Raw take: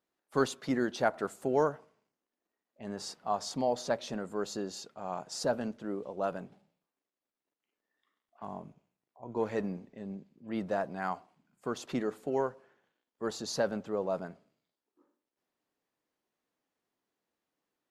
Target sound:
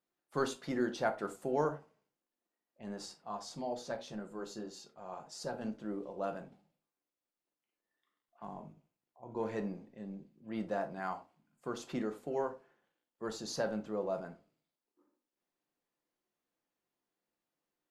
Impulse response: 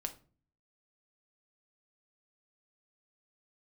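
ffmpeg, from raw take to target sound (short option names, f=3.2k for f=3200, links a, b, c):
-filter_complex "[0:a]asettb=1/sr,asplit=3[a][b][c];[a]atrim=end=3.064[d];[b]atrim=start=3.06:end=5.62,asetpts=PTS-STARTPTS,afade=t=in:d=0.004:c=qsin,afade=t=out:st=2.556:d=0.004:c=qsin,flanger=delay=4.8:depth=4.3:regen=-45:speed=1.7:shape=sinusoidal[e];[c]atrim=start=5.616[f];[d][e]acrossfade=d=0.004:c1=hsin:c2=qsin[g];[g][f]acrossfade=d=0.004:c1=qsin:c2=hsin[h];[1:a]atrim=start_sample=2205,atrim=end_sample=4410[i];[h][i]afir=irnorm=-1:irlink=0,volume=-3dB"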